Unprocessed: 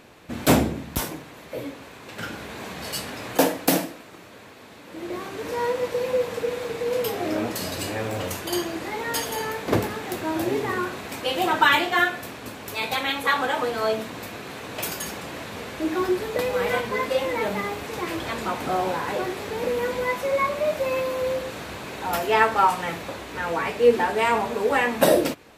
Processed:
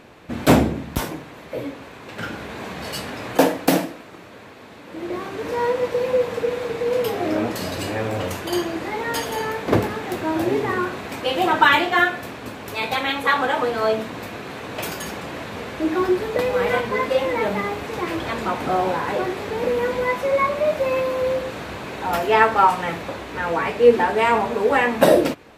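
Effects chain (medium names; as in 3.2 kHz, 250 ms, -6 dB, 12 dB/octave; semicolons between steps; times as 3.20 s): treble shelf 4.5 kHz -8.5 dB; trim +4 dB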